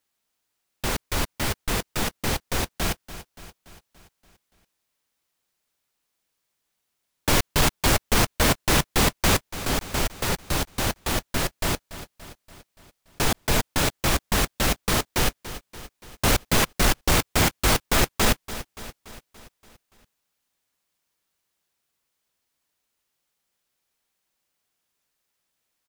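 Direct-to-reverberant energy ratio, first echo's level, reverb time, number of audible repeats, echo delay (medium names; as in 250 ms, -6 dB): no reverb, -15.0 dB, no reverb, 5, 287 ms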